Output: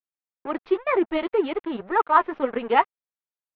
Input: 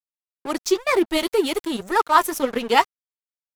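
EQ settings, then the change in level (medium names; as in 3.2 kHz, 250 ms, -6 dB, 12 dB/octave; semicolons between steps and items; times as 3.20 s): Bessel low-pass 1.7 kHz, order 8; bass shelf 230 Hz -8 dB; 0.0 dB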